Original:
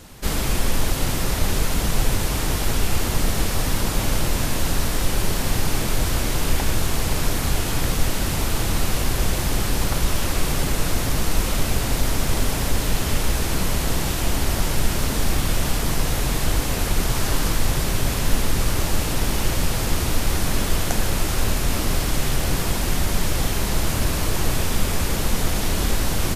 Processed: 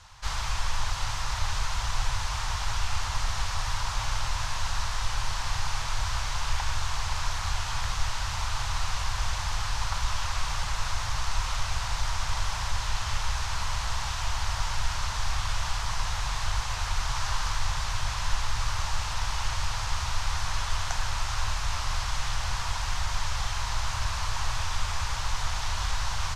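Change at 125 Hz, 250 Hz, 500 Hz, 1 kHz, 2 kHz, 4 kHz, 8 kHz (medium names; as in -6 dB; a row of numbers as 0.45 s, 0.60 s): -9.0 dB, -23.5 dB, -17.0 dB, -2.0 dB, -5.0 dB, -5.0 dB, -9.0 dB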